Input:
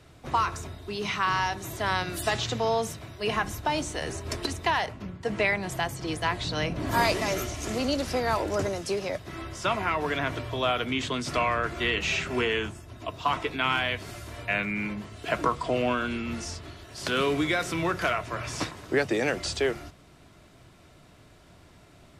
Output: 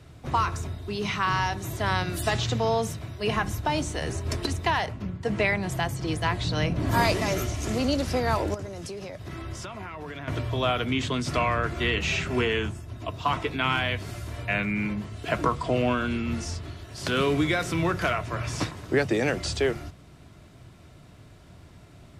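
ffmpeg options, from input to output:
-filter_complex "[0:a]asettb=1/sr,asplit=3[s0][s1][s2];[s0]atrim=end=8.544[s3];[s1]atrim=start=8.54:end=10.28,asetpts=PTS-STARTPTS,afade=t=in:d=0.004:c=qsin,afade=t=out:st=1.736:d=0.004:c=qsin,acompressor=threshold=0.0178:ratio=10:attack=3.2:release=140:knee=1:detection=peak[s4];[s2]atrim=start=10.276[s5];[s3][s4]acrossfade=d=0.004:c1=hsin:c2=qsin[s6];[s6][s5]acrossfade=d=0.004:c1=qsin:c2=hsin,equalizer=f=97:w=0.53:g=7.5"

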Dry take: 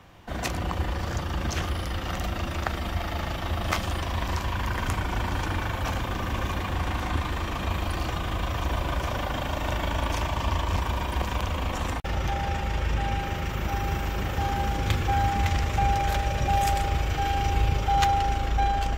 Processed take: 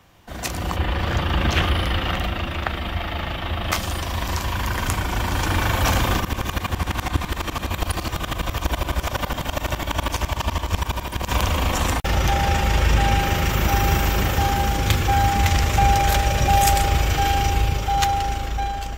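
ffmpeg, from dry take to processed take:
-filter_complex "[0:a]asettb=1/sr,asplit=3[s0][s1][s2];[s0]atrim=end=0.764[s3];[s1]atrim=start=0.76:end=3.72,asetpts=PTS-STARTPTS,afade=t=in:d=0.004:c=qsin,afade=t=out:st=2.956:d=0.004:c=qsin,highshelf=f=4400:t=q:w=1.5:g=-11[s4];[s2]atrim=start=3.716[s5];[s3][s4]acrossfade=d=0.004:c1=hsin:c2=qsin[s6];[s6][s5]acrossfade=d=0.004:c1=qsin:c2=hsin,asplit=3[s7][s8][s9];[s7]afade=t=out:st=6.19:d=0.02[s10];[s8]aeval=exprs='val(0)*pow(10,-18*if(lt(mod(-12*n/s,1),2*abs(-12)/1000),1-mod(-12*n/s,1)/(2*abs(-12)/1000),(mod(-12*n/s,1)-2*abs(-12)/1000)/(1-2*abs(-12)/1000))/20)':c=same,afade=t=in:st=6.19:d=0.02,afade=t=out:st=11.28:d=0.02[s11];[s9]afade=t=in:st=11.28:d=0.02[s12];[s10][s11][s12]amix=inputs=3:normalize=0,highshelf=f=5000:g=9.5,dynaudnorm=f=130:g=9:m=4.47,volume=0.708"

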